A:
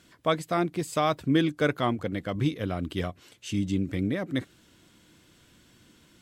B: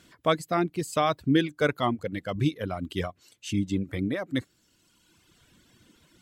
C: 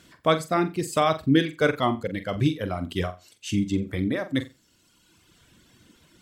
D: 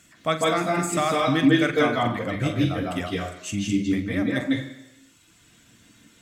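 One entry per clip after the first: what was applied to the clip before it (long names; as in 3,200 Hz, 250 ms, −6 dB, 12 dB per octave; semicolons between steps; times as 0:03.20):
reverb reduction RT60 1.5 s; level +1.5 dB
flutter between parallel walls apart 7.6 metres, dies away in 0.25 s; level +2.5 dB
convolution reverb RT60 1.0 s, pre-delay 148 ms, DRR −2 dB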